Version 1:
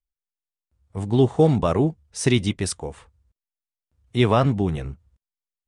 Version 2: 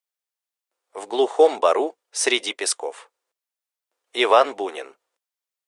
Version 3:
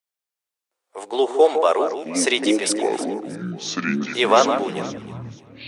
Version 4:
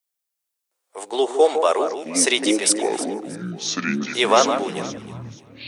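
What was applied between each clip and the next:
inverse Chebyshev high-pass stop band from 170 Hz, stop band 50 dB; trim +6 dB
echo whose repeats swap between lows and highs 158 ms, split 2 kHz, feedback 51%, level -7.5 dB; ever faster or slower copies 373 ms, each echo -7 st, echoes 3, each echo -6 dB
treble shelf 5.5 kHz +9.5 dB; trim -1 dB

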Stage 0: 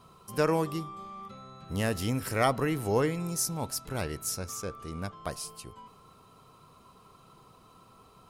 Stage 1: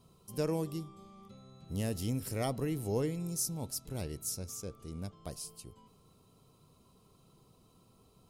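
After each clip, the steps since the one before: peaking EQ 1.4 kHz -14.5 dB 1.9 oct; trim -3 dB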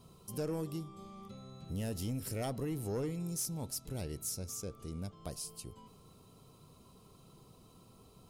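saturation -27.5 dBFS, distortion -16 dB; compression 1.5:1, threshold -49 dBFS, peak gain reduction 6.5 dB; trim +4.5 dB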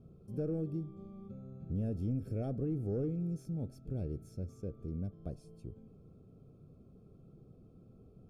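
boxcar filter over 45 samples; trim +3.5 dB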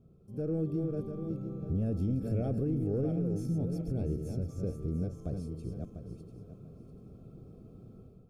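backward echo that repeats 347 ms, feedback 50%, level -6 dB; level rider gain up to 10 dB; peak limiter -20 dBFS, peak gain reduction 6 dB; trim -4 dB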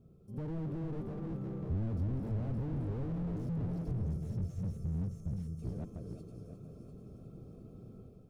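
time-frequency box 3.92–5.62 s, 220–5300 Hz -14 dB; thinning echo 353 ms, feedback 68%, high-pass 280 Hz, level -12 dB; slew-rate limiter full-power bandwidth 3.5 Hz

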